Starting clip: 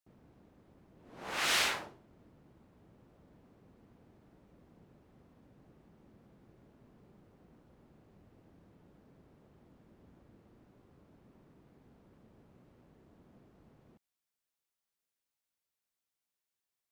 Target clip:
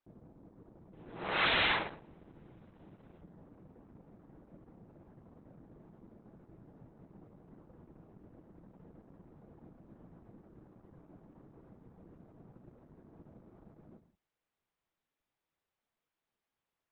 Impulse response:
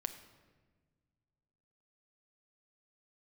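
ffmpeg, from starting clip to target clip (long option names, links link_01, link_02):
-filter_complex "[0:a]asetnsamples=nb_out_samples=441:pad=0,asendcmd='0.93 lowpass f 4100;3.21 lowpass f 1300',lowpass=1000[link_01];[1:a]atrim=start_sample=2205,afade=type=out:start_time=0.23:duration=0.01,atrim=end_sample=10584[link_02];[link_01][link_02]afir=irnorm=-1:irlink=0,aeval=exprs='0.0316*(abs(mod(val(0)/0.0316+3,4)-2)-1)':channel_layout=same,volume=8.5dB" -ar 48000 -c:a libopus -b:a 8k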